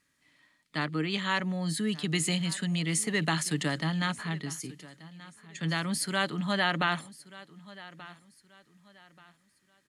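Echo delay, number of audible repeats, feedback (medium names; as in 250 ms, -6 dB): 1182 ms, 2, 31%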